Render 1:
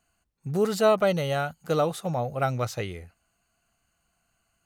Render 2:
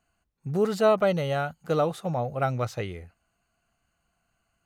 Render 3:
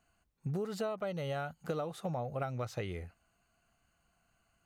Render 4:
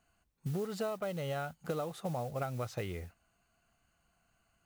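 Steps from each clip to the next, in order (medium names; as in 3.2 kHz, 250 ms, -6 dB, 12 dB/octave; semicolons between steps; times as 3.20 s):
treble shelf 4.2 kHz -8 dB
compression 12:1, threshold -33 dBFS, peak gain reduction 18 dB
modulation noise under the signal 21 dB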